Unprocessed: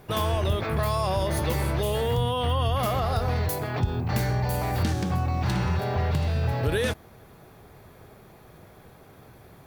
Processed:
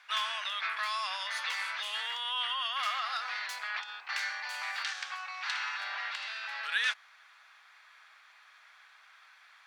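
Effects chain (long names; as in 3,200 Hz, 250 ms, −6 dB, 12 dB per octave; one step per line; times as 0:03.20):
inverse Chebyshev high-pass filter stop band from 230 Hz, stop band 80 dB
high-frequency loss of the air 120 metres
level +5 dB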